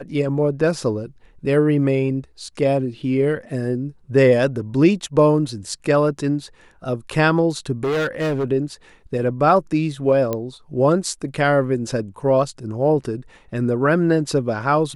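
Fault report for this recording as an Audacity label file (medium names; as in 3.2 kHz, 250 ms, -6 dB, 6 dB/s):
7.830000	8.440000	clipped -18 dBFS
10.330000	10.330000	pop -10 dBFS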